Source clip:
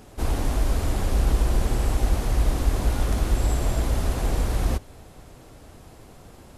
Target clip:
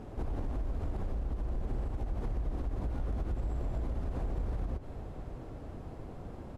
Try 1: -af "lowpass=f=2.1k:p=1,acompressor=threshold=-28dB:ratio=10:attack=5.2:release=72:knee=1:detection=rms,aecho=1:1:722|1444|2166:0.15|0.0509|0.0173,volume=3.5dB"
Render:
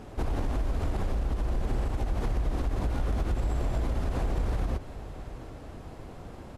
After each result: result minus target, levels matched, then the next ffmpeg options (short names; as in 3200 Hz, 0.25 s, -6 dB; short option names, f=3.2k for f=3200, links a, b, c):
compressor: peak gain reduction -6 dB; 2000 Hz band +4.5 dB
-af "lowpass=f=2.1k:p=1,acompressor=threshold=-34.5dB:ratio=10:attack=5.2:release=72:knee=1:detection=rms,aecho=1:1:722|1444|2166:0.15|0.0509|0.0173,volume=3.5dB"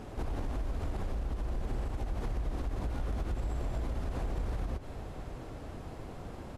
2000 Hz band +6.0 dB
-af "lowpass=f=710:p=1,acompressor=threshold=-34.5dB:ratio=10:attack=5.2:release=72:knee=1:detection=rms,aecho=1:1:722|1444|2166:0.15|0.0509|0.0173,volume=3.5dB"